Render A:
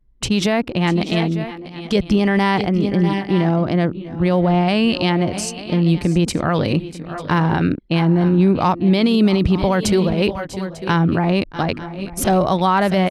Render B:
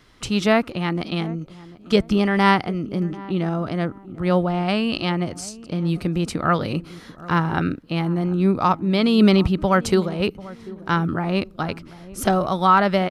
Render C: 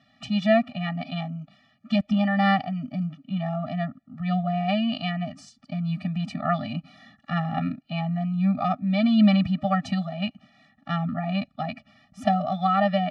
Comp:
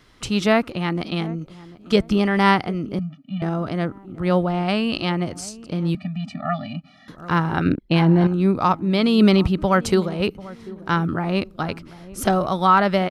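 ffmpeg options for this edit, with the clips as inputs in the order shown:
-filter_complex "[2:a]asplit=2[s0][s1];[1:a]asplit=4[s2][s3][s4][s5];[s2]atrim=end=2.992[s6];[s0]atrim=start=2.988:end=3.422[s7];[s3]atrim=start=3.418:end=5.952[s8];[s1]atrim=start=5.948:end=7.082[s9];[s4]atrim=start=7.078:end=7.662[s10];[0:a]atrim=start=7.658:end=8.272[s11];[s5]atrim=start=8.268[s12];[s6][s7]acrossfade=d=0.004:c1=hsin:c2=hsin[s13];[s13][s8]acrossfade=d=0.004:c1=hsin:c2=hsin[s14];[s14][s9]acrossfade=d=0.004:c1=hsin:c2=hsin[s15];[s15][s10]acrossfade=d=0.004:c1=hsin:c2=hsin[s16];[s16][s11]acrossfade=d=0.004:c1=hsin:c2=hsin[s17];[s17][s12]acrossfade=d=0.004:c1=hsin:c2=hsin"

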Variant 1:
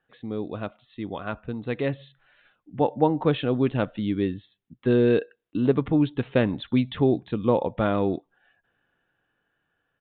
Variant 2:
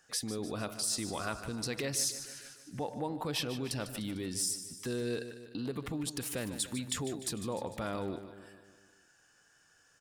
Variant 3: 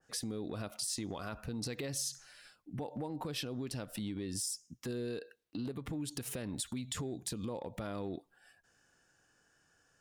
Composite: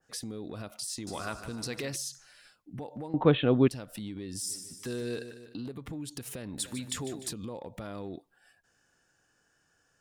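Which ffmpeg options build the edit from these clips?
-filter_complex "[1:a]asplit=3[s0][s1][s2];[2:a]asplit=5[s3][s4][s5][s6][s7];[s3]atrim=end=1.072[s8];[s0]atrim=start=1.068:end=1.962[s9];[s4]atrim=start=1.958:end=3.142[s10];[0:a]atrim=start=3.138:end=3.682[s11];[s5]atrim=start=3.678:end=4.56[s12];[s1]atrim=start=4.4:end=5.65[s13];[s6]atrim=start=5.49:end=6.582[s14];[s2]atrim=start=6.578:end=7.332[s15];[s7]atrim=start=7.328[s16];[s8][s9]acrossfade=d=0.004:c1=hsin:c2=hsin[s17];[s17][s10]acrossfade=d=0.004:c1=hsin:c2=hsin[s18];[s18][s11]acrossfade=d=0.004:c1=hsin:c2=hsin[s19];[s19][s12]acrossfade=d=0.004:c1=hsin:c2=hsin[s20];[s20][s13]acrossfade=d=0.16:c1=tri:c2=tri[s21];[s21][s14]acrossfade=d=0.16:c1=tri:c2=tri[s22];[s22][s15]acrossfade=d=0.004:c1=hsin:c2=hsin[s23];[s23][s16]acrossfade=d=0.004:c1=hsin:c2=hsin"

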